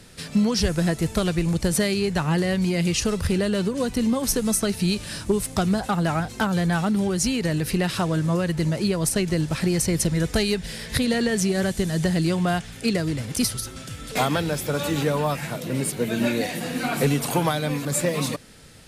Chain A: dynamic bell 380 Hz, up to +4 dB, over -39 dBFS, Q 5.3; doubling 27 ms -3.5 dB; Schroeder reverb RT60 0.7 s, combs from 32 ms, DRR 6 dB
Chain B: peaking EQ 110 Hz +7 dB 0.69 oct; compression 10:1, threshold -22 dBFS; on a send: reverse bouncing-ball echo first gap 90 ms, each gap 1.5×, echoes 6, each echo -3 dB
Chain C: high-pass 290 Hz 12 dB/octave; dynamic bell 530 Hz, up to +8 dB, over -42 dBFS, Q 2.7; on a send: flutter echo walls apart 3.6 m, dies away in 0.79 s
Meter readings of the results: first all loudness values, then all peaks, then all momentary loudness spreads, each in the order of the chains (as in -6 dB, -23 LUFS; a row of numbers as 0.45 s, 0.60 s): -21.0 LUFS, -24.0 LUFS, -19.0 LUFS; -7.0 dBFS, -10.5 dBFS, -2.5 dBFS; 6 LU, 3 LU, 6 LU